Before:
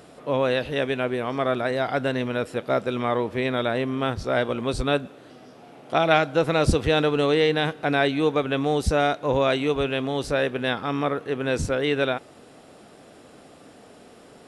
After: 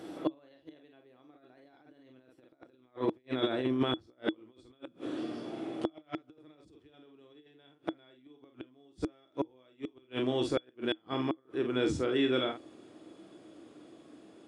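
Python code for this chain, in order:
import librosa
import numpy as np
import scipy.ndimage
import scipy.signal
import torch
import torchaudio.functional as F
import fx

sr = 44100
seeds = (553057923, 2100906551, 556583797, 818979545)

y = fx.doppler_pass(x, sr, speed_mps=24, closest_m=27.0, pass_at_s=3.41)
y = scipy.signal.sosfilt(scipy.signal.butter(2, 89.0, 'highpass', fs=sr, output='sos'), y)
y = fx.high_shelf(y, sr, hz=8300.0, db=-5.0)
y = fx.room_early_taps(y, sr, ms=(36, 47), db=(-15.5, -6.0))
y = fx.over_compress(y, sr, threshold_db=-30.0, ratio=-0.5)
y = fx.gate_flip(y, sr, shuts_db=-25.0, range_db=-37)
y = fx.small_body(y, sr, hz=(320.0, 3400.0), ring_ms=95, db=18)
y = y * 10.0 ** (4.5 / 20.0)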